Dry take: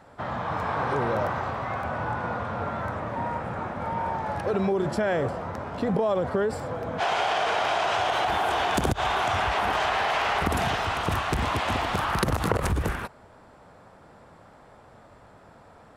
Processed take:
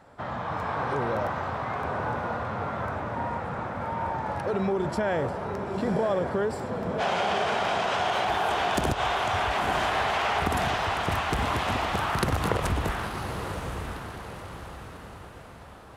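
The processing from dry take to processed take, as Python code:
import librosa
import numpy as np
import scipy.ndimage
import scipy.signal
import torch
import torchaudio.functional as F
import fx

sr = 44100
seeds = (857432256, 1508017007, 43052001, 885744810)

y = fx.echo_diffused(x, sr, ms=998, feedback_pct=45, wet_db=-6.5)
y = y * librosa.db_to_amplitude(-2.0)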